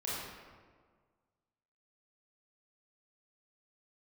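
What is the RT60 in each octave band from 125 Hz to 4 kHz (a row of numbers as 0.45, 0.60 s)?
1.8, 1.8, 1.7, 1.6, 1.3, 0.95 s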